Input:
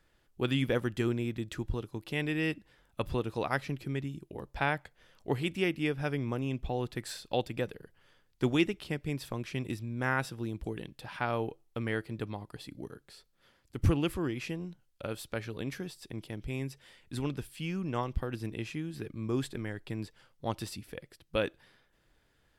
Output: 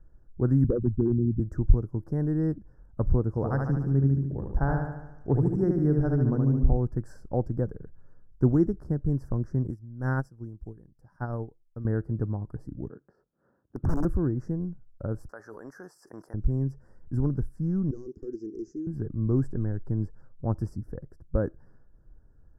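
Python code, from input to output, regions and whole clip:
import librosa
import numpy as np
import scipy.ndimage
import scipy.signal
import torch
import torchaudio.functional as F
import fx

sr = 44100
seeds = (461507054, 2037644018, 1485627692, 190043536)

y = fx.chain(x, sr, fx.envelope_sharpen(power=3.0),
    fx.clip_hard(threshold_db=-24.0),
    fx.band_squash(depth_pct=40), at=(0.64, 1.4))
y = fx.chain(y, sr, fx.lowpass(hz=12000.0, slope=12),
    fx.echo_feedback(ms=73, feedback_pct=58, wet_db=-4), at=(3.29, 6.77))
y = fx.chain(y, sr, fx.high_shelf(hz=2800.0, db=11.0),
    fx.upward_expand(threshold_db=-39.0, expansion=2.5), at=(9.7, 11.85))
y = fx.chain(y, sr, fx.bandpass_edges(low_hz=220.0, high_hz=2400.0),
    fx.overflow_wrap(gain_db=27.0), at=(12.89, 14.05))
y = fx.chain(y, sr, fx.highpass(hz=970.0, slope=12),
    fx.env_flatten(amount_pct=70), at=(15.29, 16.34))
y = fx.chain(y, sr, fx.highpass(hz=570.0, slope=12),
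    fx.clip_hard(threshold_db=-37.0),
    fx.curve_eq(hz=(160.0, 390.0, 590.0, 1000.0, 6800.0, 9700.0), db=(0, 14, -20, -25, 9, -24)), at=(17.91, 18.87))
y = scipy.signal.sosfilt(scipy.signal.ellip(3, 1.0, 40, [1600.0, 5400.0], 'bandstop', fs=sr, output='sos'), y)
y = fx.tilt_eq(y, sr, slope=-4.5)
y = F.gain(torch.from_numpy(y), -2.5).numpy()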